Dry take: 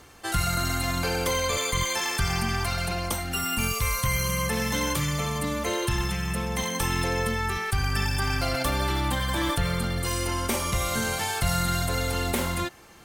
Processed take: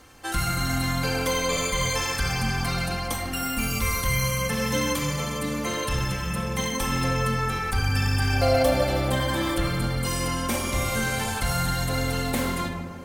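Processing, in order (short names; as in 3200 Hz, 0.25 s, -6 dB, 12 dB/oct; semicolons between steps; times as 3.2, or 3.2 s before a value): 8.33–9.12 band shelf 570 Hz +11 dB 1 oct; tape echo 0.15 s, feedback 84%, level -9 dB, low-pass 1600 Hz; shoebox room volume 3000 m³, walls furnished, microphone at 2.1 m; gain -2 dB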